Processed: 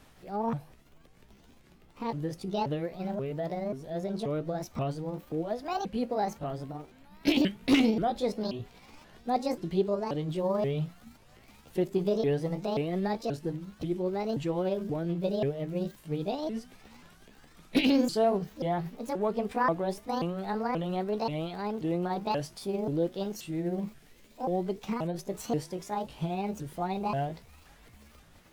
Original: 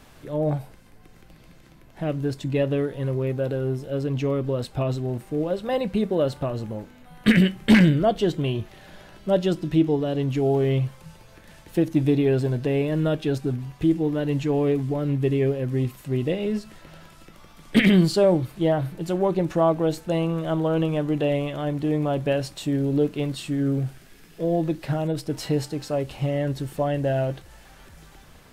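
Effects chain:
pitch shifter swept by a sawtooth +8 semitones, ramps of 532 ms
level −6.5 dB

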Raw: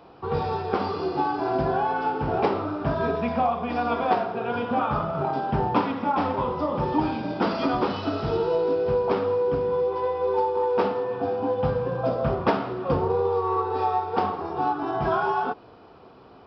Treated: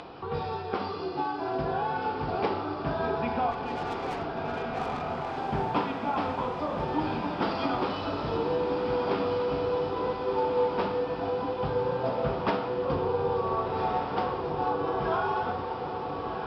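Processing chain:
upward compression, threshold −28 dBFS
low-pass filter 4,400 Hz 12 dB per octave
high-shelf EQ 2,500 Hz +8.5 dB
0:03.51–0:05.38: tube saturation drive 27 dB, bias 0.45
on a send: feedback delay with all-pass diffusion 1,538 ms, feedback 64%, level −4.5 dB
on the sum: level −6.5 dB

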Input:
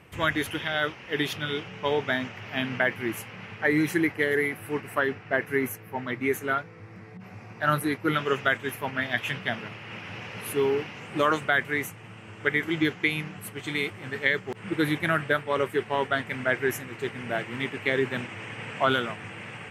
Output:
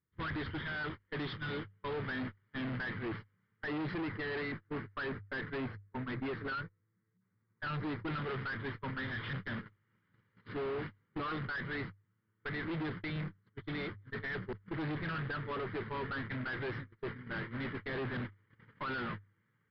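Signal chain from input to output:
noise gate −33 dBFS, range −37 dB
low-shelf EQ 89 Hz +6.5 dB
mains-hum notches 50/100 Hz
brickwall limiter −14 dBFS, peak gain reduction 6 dB
phaser with its sweep stopped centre 2,600 Hz, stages 6
tube saturation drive 39 dB, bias 0.35
high-frequency loss of the air 240 metres
downsampling to 11,025 Hz
level +4.5 dB

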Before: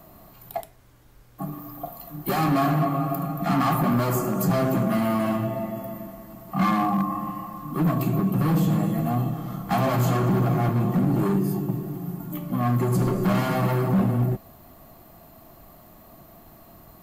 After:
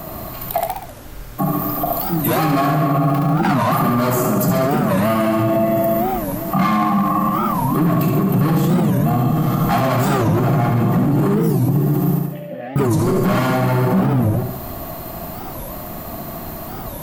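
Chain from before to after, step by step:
0:02.98–0:03.47: running median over 5 samples
downward compressor 2.5 to 1, threshold −30 dBFS, peak gain reduction 8.5 dB
0:12.19–0:12.77: formant filter e
flutter between parallel walls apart 12 metres, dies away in 0.8 s
boost into a limiter +26 dB
wow of a warped record 45 rpm, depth 250 cents
level −8 dB

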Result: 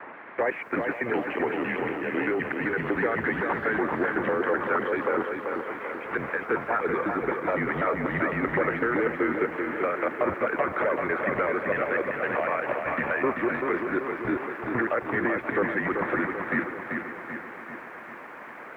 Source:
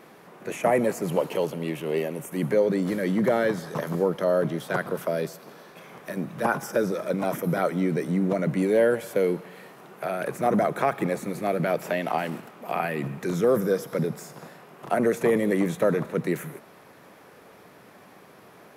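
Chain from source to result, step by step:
slices reordered back to front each 126 ms, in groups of 3
noise gate −38 dBFS, range −9 dB
first difference
in parallel at +2.5 dB: brickwall limiter −34 dBFS, peak gain reduction 10 dB
on the sum: downward compressor 16 to 1, threshold −46 dBFS, peak gain reduction 17.5 dB
sine wavefolder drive 13 dB, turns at −29.5 dBFS
harmonic and percussive parts rebalanced percussive +5 dB
on a send: feedback echo with a high-pass in the loop 527 ms, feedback 42%, high-pass 230 Hz, level −14 dB
on the sum: single-sideband voice off tune −120 Hz 280–2,200 Hz
feedback echo at a low word length 387 ms, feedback 55%, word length 12 bits, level −5 dB
level +7.5 dB

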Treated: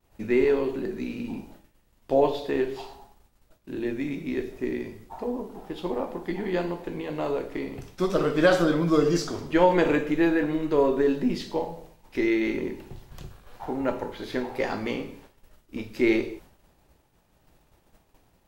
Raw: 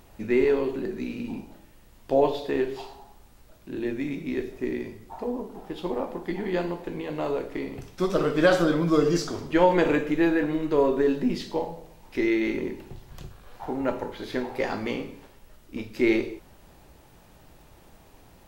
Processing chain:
downward expander −44 dBFS

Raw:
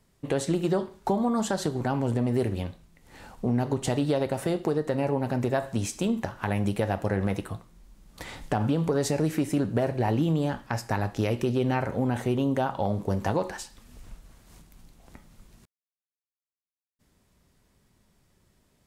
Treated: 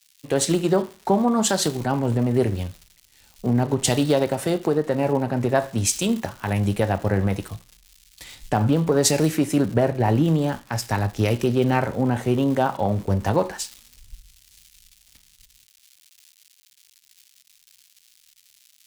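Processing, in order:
surface crackle 270 per second −35 dBFS
multiband upward and downward expander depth 100%
level +5 dB

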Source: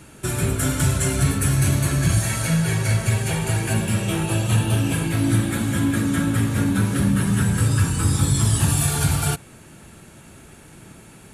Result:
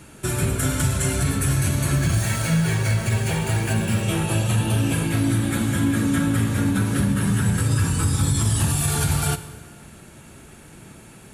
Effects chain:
0:01.95–0:04.03: running median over 3 samples
brickwall limiter −12 dBFS, peak gain reduction 3.5 dB
dense smooth reverb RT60 1.7 s, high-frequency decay 0.8×, DRR 12 dB

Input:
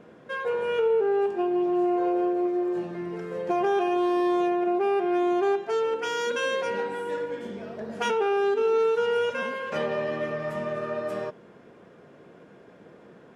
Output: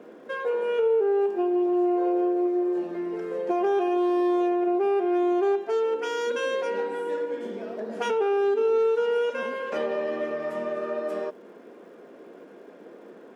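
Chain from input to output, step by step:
high-pass filter 230 Hz 24 dB per octave
parametric band 350 Hz +6 dB 2.2 octaves
in parallel at +1 dB: downward compressor, threshold −31 dBFS, peak gain reduction 15 dB
on the sum: surface crackle 400 per second −54 dBFS
level −6.5 dB

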